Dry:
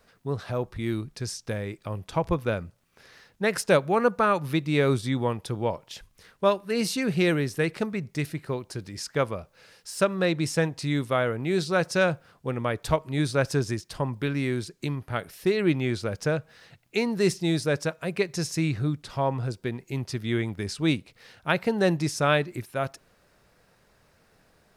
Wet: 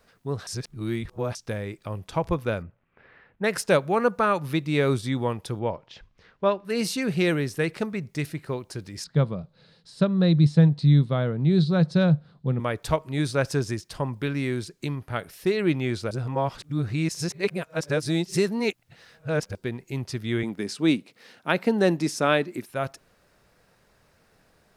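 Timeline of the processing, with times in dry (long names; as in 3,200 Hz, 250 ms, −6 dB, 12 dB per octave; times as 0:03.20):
0:00.47–0:01.35: reverse
0:02.62–0:03.44: low-pass filter 2,500 Hz 24 dB per octave
0:05.59–0:06.65: high-frequency loss of the air 190 metres
0:09.04–0:12.60: drawn EQ curve 100 Hz 0 dB, 150 Hz +14 dB, 290 Hz 0 dB, 2,700 Hz −10 dB, 4,000 Hz +3 dB, 5,800 Hz −15 dB, 9,100 Hz −16 dB, 13,000 Hz −29 dB
0:16.11–0:19.55: reverse
0:20.43–0:22.68: high-pass with resonance 230 Hz, resonance Q 1.7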